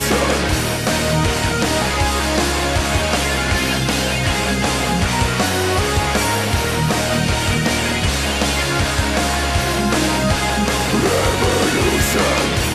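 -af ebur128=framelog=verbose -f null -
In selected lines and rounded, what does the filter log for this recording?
Integrated loudness:
  I:         -17.0 LUFS
  Threshold: -27.0 LUFS
Loudness range:
  LRA:         0.8 LU
  Threshold: -37.1 LUFS
  LRA low:   -17.3 LUFS
  LRA high:  -16.5 LUFS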